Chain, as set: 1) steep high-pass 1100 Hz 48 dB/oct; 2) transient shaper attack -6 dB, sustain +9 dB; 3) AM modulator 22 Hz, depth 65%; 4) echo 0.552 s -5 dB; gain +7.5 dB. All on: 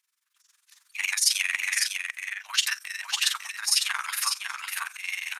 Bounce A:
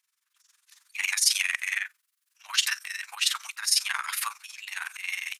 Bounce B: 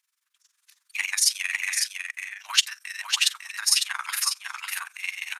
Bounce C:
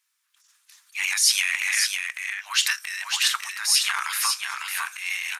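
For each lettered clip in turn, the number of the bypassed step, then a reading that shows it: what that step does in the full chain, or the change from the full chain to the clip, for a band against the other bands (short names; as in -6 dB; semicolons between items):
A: 4, momentary loudness spread change +4 LU; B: 2, crest factor change +3.5 dB; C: 3, crest factor change -3.0 dB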